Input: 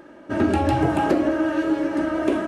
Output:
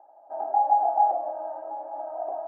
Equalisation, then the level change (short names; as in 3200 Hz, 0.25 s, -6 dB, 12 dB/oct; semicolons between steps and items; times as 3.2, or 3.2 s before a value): Butterworth band-pass 760 Hz, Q 5.8; air absorption 99 m; +8.5 dB